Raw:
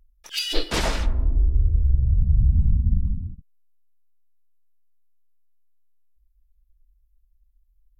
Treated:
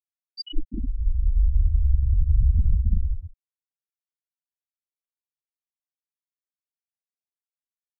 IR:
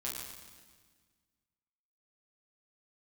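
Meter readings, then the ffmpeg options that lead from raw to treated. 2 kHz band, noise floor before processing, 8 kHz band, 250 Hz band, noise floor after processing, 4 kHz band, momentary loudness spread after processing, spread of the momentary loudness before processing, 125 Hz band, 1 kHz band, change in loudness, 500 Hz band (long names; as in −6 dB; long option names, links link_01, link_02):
below −40 dB, −64 dBFS, can't be measured, −5.5 dB, below −85 dBFS, below −10 dB, 13 LU, 9 LU, −2.0 dB, below −40 dB, −1.5 dB, below −20 dB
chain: -af "equalizer=frequency=125:width_type=o:width=1:gain=-6,equalizer=frequency=250:width_type=o:width=1:gain=10,equalizer=frequency=500:width_type=o:width=1:gain=-12,equalizer=frequency=1000:width_type=o:width=1:gain=-6,equalizer=frequency=2000:width_type=o:width=1:gain=-5,equalizer=frequency=4000:width_type=o:width=1:gain=4,equalizer=frequency=8000:width_type=o:width=1:gain=-11,afftfilt=real='re*gte(hypot(re,im),0.355)':imag='im*gte(hypot(re,im),0.355)':win_size=1024:overlap=0.75"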